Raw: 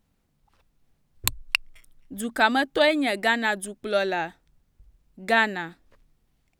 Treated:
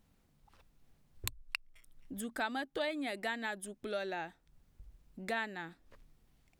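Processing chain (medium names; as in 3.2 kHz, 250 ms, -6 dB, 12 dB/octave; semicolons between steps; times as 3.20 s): compression 2:1, threshold -47 dBFS, peak gain reduction 17.5 dB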